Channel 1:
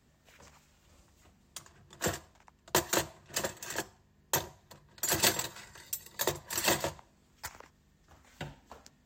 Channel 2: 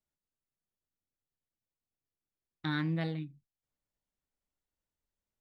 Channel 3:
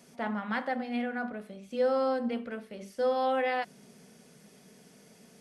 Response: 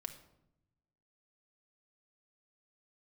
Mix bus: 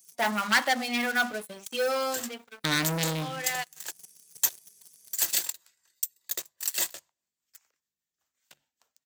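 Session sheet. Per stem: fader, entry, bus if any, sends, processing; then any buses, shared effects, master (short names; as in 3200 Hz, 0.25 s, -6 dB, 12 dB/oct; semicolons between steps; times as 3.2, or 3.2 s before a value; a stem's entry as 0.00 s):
-18.0 dB, 0.10 s, send -19 dB, rotary speaker horn 5 Hz
-3.5 dB, 0.00 s, send -5 dB, low shelf 400 Hz +11.5 dB
+2.0 dB, 0.00 s, send -22.5 dB, per-bin expansion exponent 1.5; low shelf 160 Hz +2 dB; auto duck -22 dB, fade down 1.15 s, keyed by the second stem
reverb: on, RT60 0.85 s, pre-delay 4 ms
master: sample leveller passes 3; tilt +4.5 dB/oct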